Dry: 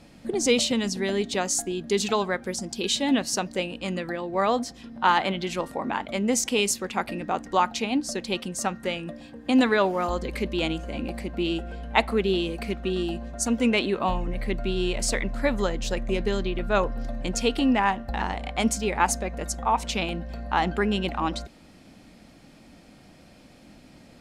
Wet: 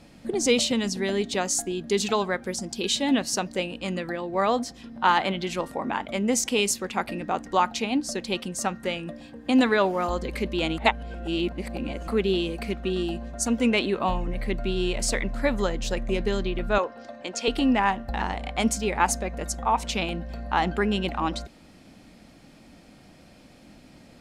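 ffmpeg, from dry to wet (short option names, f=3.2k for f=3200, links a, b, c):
-filter_complex "[0:a]asettb=1/sr,asplit=3[a][b][c];[a]atrim=end=5.734[d];[b]atrim=start=5.73:end=6.32,asetpts=PTS-STARTPTS,afade=t=in:d=0.004:c=qsin,afade=t=out:st=0.586:d=0.004:c=qsin,bandreject=f=4.2k:w=12[e];[c]atrim=start=6.316[f];[d][e]acrossfade=d=0.004:c1=hsin:c2=qsin[g];[g][f]acrossfade=d=0.004:c1=qsin:c2=hsin,asettb=1/sr,asplit=3[h][i][j];[h]atrim=end=16.784[k];[i]atrim=start=16.78:end=17.48,asetpts=PTS-STARTPTS,afade=t=in:d=0.004:c=qsin,afade=t=out:st=0.696:d=0.004:c=qsin,highpass=390,lowpass=6.7k[l];[j]atrim=start=17.476[m];[k][l]acrossfade=d=0.004:c1=hsin:c2=qsin[n];[n][m]acrossfade=d=0.004:c1=qsin:c2=hsin,asplit=3[o][p][q];[o]atrim=end=10.782[r];[p]atrim=start=10.778:end=12.082,asetpts=PTS-STARTPTS,areverse[s];[q]atrim=start=12.078[t];[r][s]acrossfade=d=0.004:c1=hsin:c2=hsin[u];[u][t]acrossfade=d=0.004:c1=hsin:c2=hsin"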